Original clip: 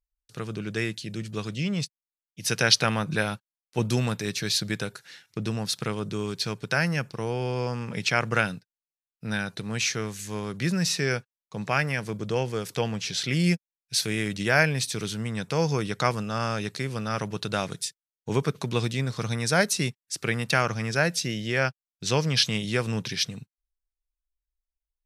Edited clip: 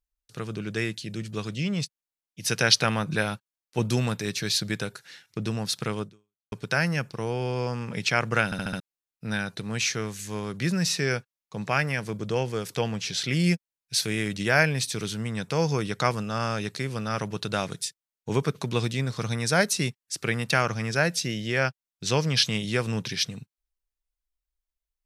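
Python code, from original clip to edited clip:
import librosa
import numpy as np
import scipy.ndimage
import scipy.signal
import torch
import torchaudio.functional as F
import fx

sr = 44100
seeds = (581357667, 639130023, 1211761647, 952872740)

y = fx.edit(x, sr, fx.fade_out_span(start_s=6.02, length_s=0.5, curve='exp'),
    fx.stutter_over(start_s=8.45, slice_s=0.07, count=5), tone=tone)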